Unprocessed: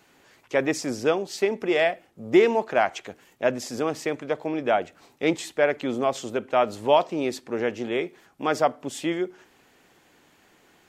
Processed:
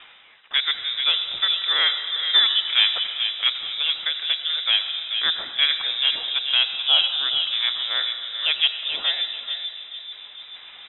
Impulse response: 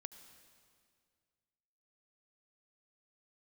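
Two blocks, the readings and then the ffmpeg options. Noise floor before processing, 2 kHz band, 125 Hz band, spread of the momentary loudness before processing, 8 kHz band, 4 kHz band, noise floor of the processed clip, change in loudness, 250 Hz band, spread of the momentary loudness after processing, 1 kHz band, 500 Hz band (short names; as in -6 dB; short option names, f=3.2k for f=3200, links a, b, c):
-60 dBFS, +4.0 dB, under -20 dB, 9 LU, under -40 dB, +22.0 dB, -45 dBFS, +5.0 dB, under -25 dB, 11 LU, -9.0 dB, -23.0 dB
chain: -filter_complex "[0:a]aeval=exprs='if(lt(val(0),0),0.708*val(0),val(0))':c=same,lowshelf=f=330:g=-5.5,asplit=2[a][b];[b]acompressor=threshold=-32dB:ratio=6,volume=-2.5dB[c];[a][c]amix=inputs=2:normalize=0,asplit=2[d][e];[e]adelay=435,lowpass=f=1.2k:p=1,volume=-4.5dB,asplit=2[f][g];[g]adelay=435,lowpass=f=1.2k:p=1,volume=0.41,asplit=2[h][i];[i]adelay=435,lowpass=f=1.2k:p=1,volume=0.41,asplit=2[j][k];[k]adelay=435,lowpass=f=1.2k:p=1,volume=0.41,asplit=2[l][m];[m]adelay=435,lowpass=f=1.2k:p=1,volume=0.41[n];[d][f][h][j][l][n]amix=inputs=6:normalize=0,lowpass=f=3.3k:t=q:w=0.5098,lowpass=f=3.3k:t=q:w=0.6013,lowpass=f=3.3k:t=q:w=0.9,lowpass=f=3.3k:t=q:w=2.563,afreqshift=-3900[o];[1:a]atrim=start_sample=2205,asetrate=38808,aresample=44100[p];[o][p]afir=irnorm=-1:irlink=0,areverse,acompressor=mode=upward:threshold=-39dB:ratio=2.5,areverse,volume=6.5dB"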